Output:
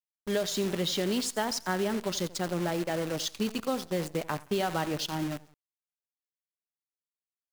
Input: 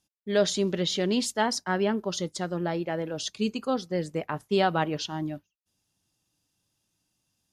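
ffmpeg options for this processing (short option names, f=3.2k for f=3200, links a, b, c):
-af "acompressor=threshold=-25dB:ratio=10,aecho=1:1:86|172|258:0.158|0.0555|0.0194,acrusher=bits=7:dc=4:mix=0:aa=0.000001"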